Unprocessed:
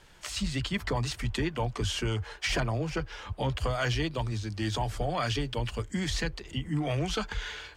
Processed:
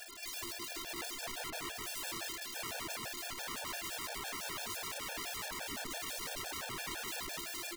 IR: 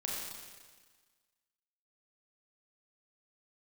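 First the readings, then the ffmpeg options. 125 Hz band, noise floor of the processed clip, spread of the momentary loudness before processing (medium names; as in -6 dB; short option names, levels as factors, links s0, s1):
-27.0 dB, -45 dBFS, 5 LU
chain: -filter_complex "[0:a]asplit=2[s0][s1];[s1]aeval=exprs='0.0891*sin(PI/2*1.58*val(0)/0.0891)':c=same,volume=0.631[s2];[s0][s2]amix=inputs=2:normalize=0,aphaser=in_gain=1:out_gain=1:delay=1.1:decay=0.63:speed=0.76:type=triangular,aeval=exprs='(tanh(44.7*val(0)+0.7)-tanh(0.7))/44.7':c=same,afftfilt=real='re*between(b*sr/4096,160,6300)':imag='im*between(b*sr/4096,160,6300)':win_size=4096:overlap=0.75,afftfilt=real='hypot(re,im)*cos(PI*b)':imag='0':win_size=512:overlap=0.75,asubboost=boost=10:cutoff=210,alimiter=level_in=3.35:limit=0.0631:level=0:latency=1:release=73,volume=0.299,asplit=2[s3][s4];[s4]aecho=0:1:106|212|318|424|530:0.355|0.156|0.0687|0.0302|0.0133[s5];[s3][s5]amix=inputs=2:normalize=0,aeval=exprs='(mod(200*val(0)+1,2)-1)/200':c=same,lowshelf=f=360:g=-5,bandreject=f=1400:w=28,afftfilt=real='re*gt(sin(2*PI*5.9*pts/sr)*(1-2*mod(floor(b*sr/1024/460),2)),0)':imag='im*gt(sin(2*PI*5.9*pts/sr)*(1-2*mod(floor(b*sr/1024/460),2)),0)':win_size=1024:overlap=0.75,volume=4.47"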